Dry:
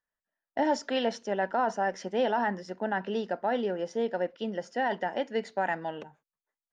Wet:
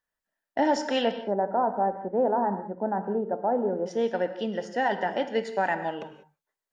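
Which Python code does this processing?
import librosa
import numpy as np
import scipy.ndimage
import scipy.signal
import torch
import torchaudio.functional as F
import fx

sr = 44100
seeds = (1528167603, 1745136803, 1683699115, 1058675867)

y = fx.lowpass(x, sr, hz=1100.0, slope=24, at=(1.11, 3.86))
y = fx.rev_gated(y, sr, seeds[0], gate_ms=220, shape='flat', drr_db=9.0)
y = y * 10.0 ** (3.0 / 20.0)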